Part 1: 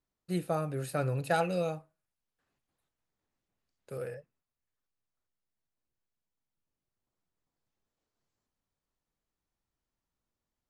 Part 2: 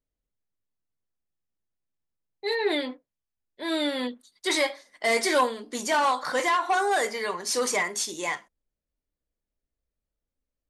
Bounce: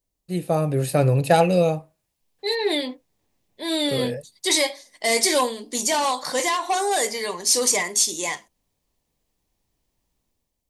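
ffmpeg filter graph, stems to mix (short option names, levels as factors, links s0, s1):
-filter_complex "[0:a]dynaudnorm=f=140:g=7:m=3.76,adynamicequalizer=threshold=0.02:dfrequency=2000:dqfactor=0.7:tfrequency=2000:tqfactor=0.7:attack=5:release=100:ratio=0.375:range=1.5:mode=cutabove:tftype=highshelf,volume=1.26[s0];[1:a]bass=f=250:g=2,treble=f=4000:g=9,volume=1.33[s1];[s0][s1]amix=inputs=2:normalize=0,equalizer=f=1400:t=o:w=0.52:g=-10.5"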